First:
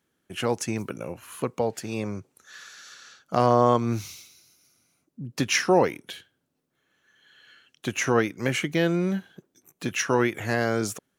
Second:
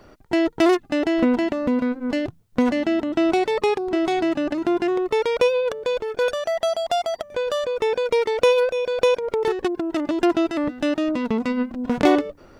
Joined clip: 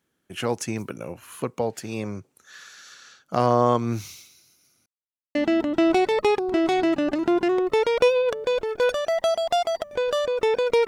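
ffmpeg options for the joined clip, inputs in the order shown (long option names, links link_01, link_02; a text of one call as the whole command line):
ffmpeg -i cue0.wav -i cue1.wav -filter_complex "[0:a]apad=whole_dur=10.87,atrim=end=10.87,asplit=2[link_01][link_02];[link_01]atrim=end=4.86,asetpts=PTS-STARTPTS,afade=type=out:start_time=4.856:duration=0.004:curve=hsin[link_03];[link_02]atrim=start=4.86:end=5.35,asetpts=PTS-STARTPTS,volume=0[link_04];[1:a]atrim=start=2.74:end=8.26,asetpts=PTS-STARTPTS,afade=type=in:duration=0.004:curve=hsin[link_05];[link_03][link_04][link_05]concat=n=3:v=0:a=1" out.wav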